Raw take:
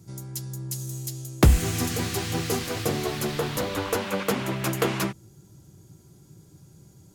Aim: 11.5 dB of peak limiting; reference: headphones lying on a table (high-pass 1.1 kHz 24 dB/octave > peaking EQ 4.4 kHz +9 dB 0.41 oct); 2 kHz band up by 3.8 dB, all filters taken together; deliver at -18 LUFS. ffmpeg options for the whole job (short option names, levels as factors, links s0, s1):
-af "equalizer=f=2000:t=o:g=4.5,alimiter=limit=0.133:level=0:latency=1,highpass=f=1100:w=0.5412,highpass=f=1100:w=1.3066,equalizer=f=4400:t=o:w=0.41:g=9,volume=4.22"